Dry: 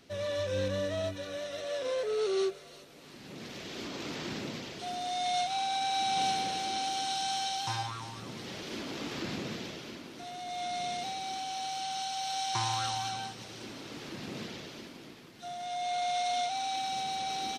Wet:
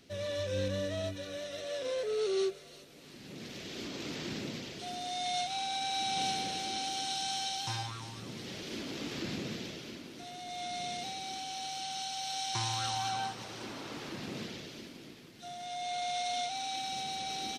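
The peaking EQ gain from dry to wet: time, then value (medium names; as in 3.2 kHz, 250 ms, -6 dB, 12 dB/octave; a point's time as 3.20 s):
peaking EQ 1 kHz 1.5 oct
12.73 s -6 dB
13.23 s +5.5 dB
13.89 s +5.5 dB
14.67 s -6 dB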